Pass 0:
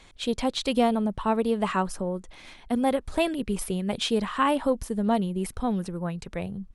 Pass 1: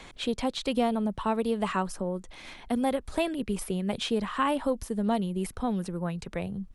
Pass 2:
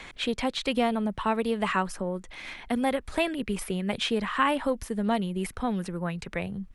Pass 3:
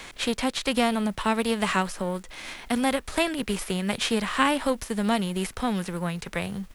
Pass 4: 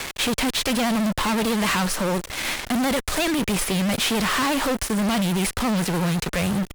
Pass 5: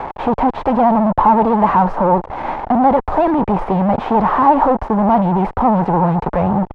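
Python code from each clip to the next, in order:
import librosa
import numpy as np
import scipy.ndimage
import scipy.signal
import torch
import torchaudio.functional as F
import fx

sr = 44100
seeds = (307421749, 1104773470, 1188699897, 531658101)

y1 = fx.band_squash(x, sr, depth_pct=40)
y1 = y1 * librosa.db_to_amplitude(-3.0)
y2 = fx.peak_eq(y1, sr, hz=2000.0, db=7.5, octaves=1.3)
y3 = fx.envelope_flatten(y2, sr, power=0.6)
y3 = y3 * librosa.db_to_amplitude(2.0)
y4 = fx.vibrato(y3, sr, rate_hz=14.0, depth_cents=67.0)
y4 = fx.fuzz(y4, sr, gain_db=41.0, gate_db=-41.0)
y4 = y4 * librosa.db_to_amplitude(-7.0)
y5 = fx.lowpass_res(y4, sr, hz=870.0, q=4.4)
y5 = y5 * librosa.db_to_amplitude(6.0)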